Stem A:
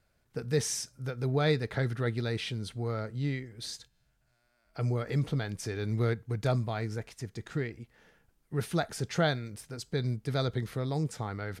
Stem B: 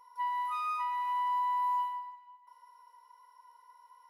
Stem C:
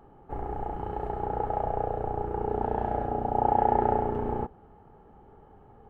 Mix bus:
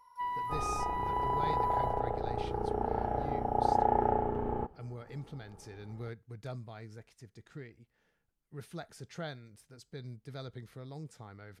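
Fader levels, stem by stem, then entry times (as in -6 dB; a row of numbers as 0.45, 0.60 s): -13.5, -2.5, -4.0 dB; 0.00, 0.00, 0.20 s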